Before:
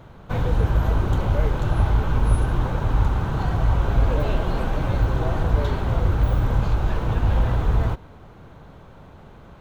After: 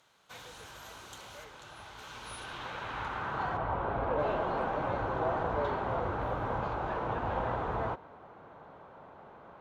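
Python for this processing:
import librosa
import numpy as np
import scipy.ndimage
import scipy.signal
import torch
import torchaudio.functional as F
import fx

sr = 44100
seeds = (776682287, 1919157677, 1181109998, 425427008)

y = fx.high_shelf(x, sr, hz=fx.line((1.43, 3600.0), (1.97, 5800.0)), db=-10.0, at=(1.43, 1.97), fade=0.02)
y = fx.filter_sweep_bandpass(y, sr, from_hz=7400.0, to_hz=860.0, start_s=1.92, end_s=3.73, q=0.93)
y = fx.air_absorb(y, sr, metres=160.0, at=(3.57, 4.19))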